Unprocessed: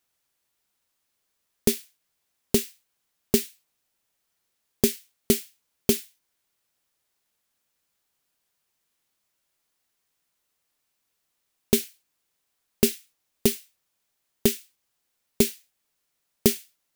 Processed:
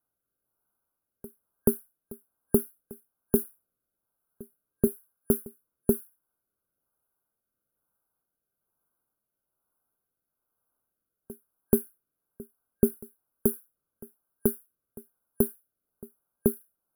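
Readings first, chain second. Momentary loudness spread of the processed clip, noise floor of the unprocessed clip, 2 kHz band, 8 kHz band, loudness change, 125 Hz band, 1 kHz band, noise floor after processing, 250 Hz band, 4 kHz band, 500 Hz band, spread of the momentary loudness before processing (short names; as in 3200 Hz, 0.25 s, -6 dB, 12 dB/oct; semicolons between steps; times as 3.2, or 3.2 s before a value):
16 LU, -77 dBFS, under -15 dB, -9.0 dB, -3.5 dB, -1.5 dB, -3.5 dB, under -85 dBFS, -1.5 dB, under -40 dB, -1.5 dB, 13 LU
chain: rotary speaker horn 1.1 Hz; FFT band-reject 1600–9800 Hz; reverse echo 0.431 s -21.5 dB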